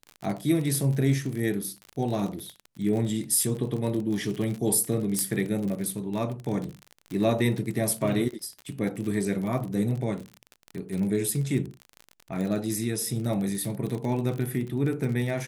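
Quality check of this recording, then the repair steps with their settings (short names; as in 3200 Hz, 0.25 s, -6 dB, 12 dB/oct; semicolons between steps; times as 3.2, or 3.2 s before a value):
crackle 41/s -31 dBFS
5.19 pop -11 dBFS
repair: de-click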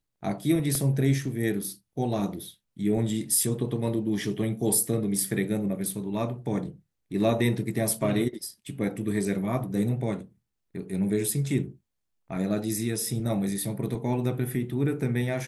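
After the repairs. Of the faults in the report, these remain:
5.19 pop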